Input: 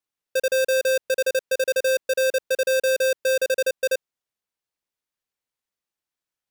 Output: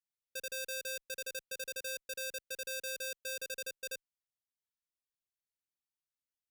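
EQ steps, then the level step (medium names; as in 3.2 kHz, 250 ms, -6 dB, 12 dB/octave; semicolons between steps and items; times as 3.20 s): amplifier tone stack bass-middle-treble 6-0-2; +4.0 dB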